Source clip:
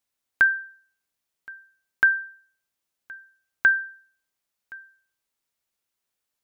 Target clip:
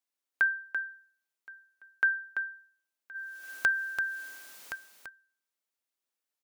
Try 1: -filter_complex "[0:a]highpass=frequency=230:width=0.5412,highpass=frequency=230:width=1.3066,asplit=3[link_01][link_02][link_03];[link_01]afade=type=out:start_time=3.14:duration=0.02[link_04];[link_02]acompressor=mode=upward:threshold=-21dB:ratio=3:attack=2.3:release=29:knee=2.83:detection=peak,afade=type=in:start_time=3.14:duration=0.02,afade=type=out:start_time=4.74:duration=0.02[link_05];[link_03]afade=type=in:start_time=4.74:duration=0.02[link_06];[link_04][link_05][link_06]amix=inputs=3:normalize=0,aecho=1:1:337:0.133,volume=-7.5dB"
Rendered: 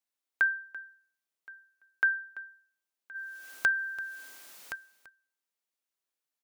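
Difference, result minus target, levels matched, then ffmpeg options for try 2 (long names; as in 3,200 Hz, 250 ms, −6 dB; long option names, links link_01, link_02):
echo-to-direct −10 dB
-filter_complex "[0:a]highpass=frequency=230:width=0.5412,highpass=frequency=230:width=1.3066,asplit=3[link_01][link_02][link_03];[link_01]afade=type=out:start_time=3.14:duration=0.02[link_04];[link_02]acompressor=mode=upward:threshold=-21dB:ratio=3:attack=2.3:release=29:knee=2.83:detection=peak,afade=type=in:start_time=3.14:duration=0.02,afade=type=out:start_time=4.74:duration=0.02[link_05];[link_03]afade=type=in:start_time=4.74:duration=0.02[link_06];[link_04][link_05][link_06]amix=inputs=3:normalize=0,aecho=1:1:337:0.422,volume=-7.5dB"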